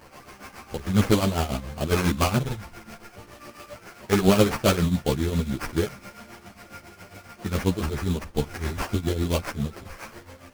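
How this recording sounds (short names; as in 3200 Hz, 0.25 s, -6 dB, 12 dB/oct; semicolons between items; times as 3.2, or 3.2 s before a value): a quantiser's noise floor 8-bit, dither none; tremolo triangle 7.3 Hz, depth 80%; aliases and images of a low sample rate 3700 Hz, jitter 20%; a shimmering, thickened sound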